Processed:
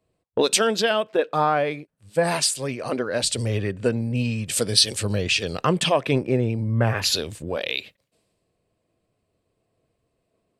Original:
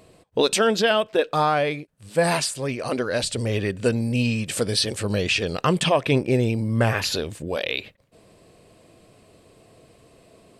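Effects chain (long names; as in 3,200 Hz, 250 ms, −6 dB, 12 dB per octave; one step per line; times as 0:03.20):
downward compressor 2 to 1, threshold −30 dBFS, peak gain reduction 9 dB
multiband upward and downward expander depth 100%
level +5 dB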